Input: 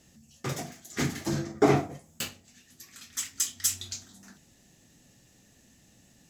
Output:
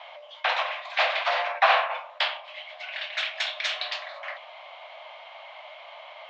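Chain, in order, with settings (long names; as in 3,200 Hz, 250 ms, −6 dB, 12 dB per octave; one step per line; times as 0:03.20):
single-sideband voice off tune +370 Hz 290–3,000 Hz
every bin compressed towards the loudest bin 2 to 1
level +4 dB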